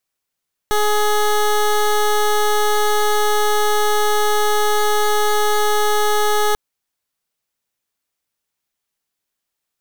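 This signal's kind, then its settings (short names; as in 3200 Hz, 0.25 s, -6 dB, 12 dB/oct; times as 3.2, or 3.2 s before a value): pulse 420 Hz, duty 17% -15.5 dBFS 5.84 s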